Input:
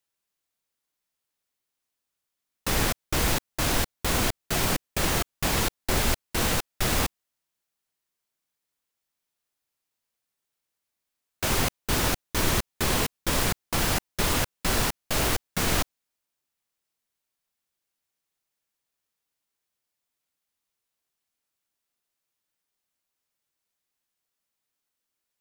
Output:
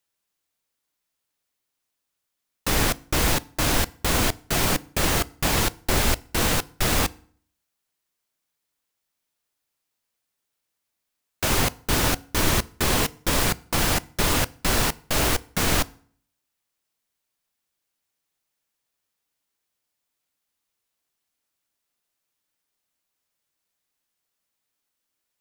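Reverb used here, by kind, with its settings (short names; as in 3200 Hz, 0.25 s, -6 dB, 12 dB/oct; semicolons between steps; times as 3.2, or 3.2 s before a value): FDN reverb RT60 0.52 s, low-frequency decay 1.2×, high-frequency decay 0.8×, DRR 18 dB; gain +3 dB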